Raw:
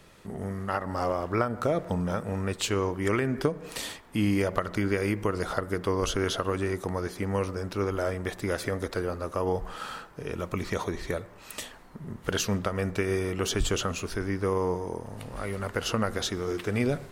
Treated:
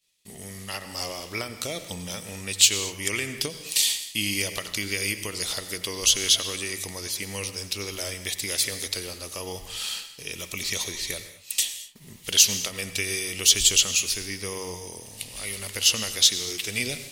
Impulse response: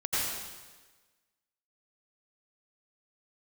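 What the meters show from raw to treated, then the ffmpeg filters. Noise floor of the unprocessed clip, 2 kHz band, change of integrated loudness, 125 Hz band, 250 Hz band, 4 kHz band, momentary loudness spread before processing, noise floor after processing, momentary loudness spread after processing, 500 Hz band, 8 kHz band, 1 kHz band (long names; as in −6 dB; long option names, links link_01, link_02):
−50 dBFS, +4.0 dB, +5.5 dB, −8.0 dB, −8.5 dB, +14.0 dB, 9 LU, −45 dBFS, 16 LU, −8.5 dB, +16.5 dB, −9.0 dB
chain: -filter_complex "[0:a]agate=range=-33dB:threshold=-39dB:ratio=3:detection=peak,aexciter=amount=8.7:drive=8.3:freq=2200,asplit=2[link_01][link_02];[1:a]atrim=start_sample=2205,afade=type=out:start_time=0.3:duration=0.01,atrim=end_sample=13671[link_03];[link_02][link_03]afir=irnorm=-1:irlink=0,volume=-18dB[link_04];[link_01][link_04]amix=inputs=2:normalize=0,volume=-9.5dB"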